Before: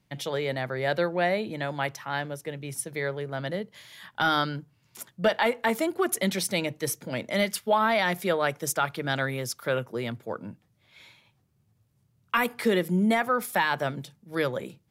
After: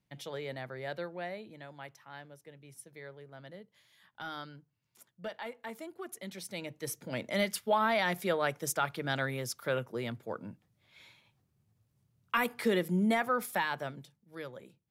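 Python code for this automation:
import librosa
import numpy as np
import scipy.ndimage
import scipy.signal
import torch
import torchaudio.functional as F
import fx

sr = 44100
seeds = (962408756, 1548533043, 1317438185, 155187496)

y = fx.gain(x, sr, db=fx.line((0.61, -10.5), (1.69, -17.5), (6.25, -17.5), (7.15, -5.0), (13.43, -5.0), (14.39, -16.0)))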